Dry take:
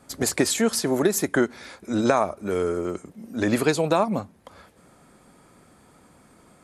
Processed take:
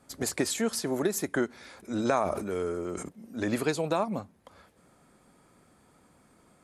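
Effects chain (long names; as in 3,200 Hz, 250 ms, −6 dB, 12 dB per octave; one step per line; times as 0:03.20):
0:01.54–0:03.09: level that may fall only so fast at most 38 dB per second
level −7 dB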